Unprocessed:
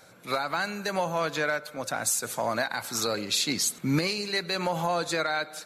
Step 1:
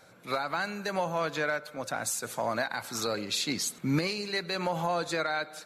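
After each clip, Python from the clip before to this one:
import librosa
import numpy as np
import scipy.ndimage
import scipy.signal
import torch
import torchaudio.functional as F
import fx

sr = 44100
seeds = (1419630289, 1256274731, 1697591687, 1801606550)

y = fx.high_shelf(x, sr, hz=4700.0, db=-5.0)
y = y * librosa.db_to_amplitude(-2.0)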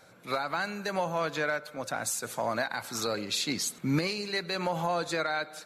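y = x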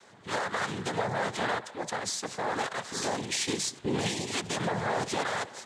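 y = fx.clip_asym(x, sr, top_db=-30.0, bottom_db=-23.5)
y = fx.noise_vocoder(y, sr, seeds[0], bands=6)
y = y * librosa.db_to_amplitude(2.0)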